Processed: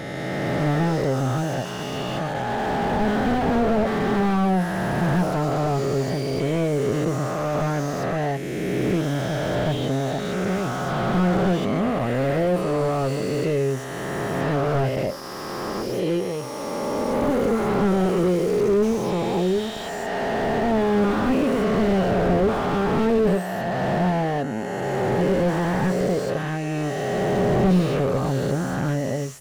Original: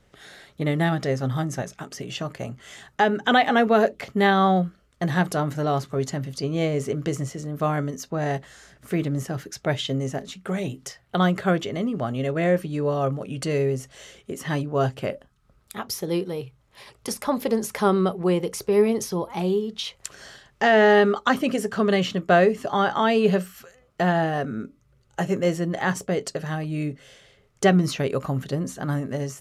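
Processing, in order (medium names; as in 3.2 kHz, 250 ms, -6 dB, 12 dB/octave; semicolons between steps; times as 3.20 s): reverse spectral sustain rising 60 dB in 2.93 s; slew-rate limiter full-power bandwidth 59 Hz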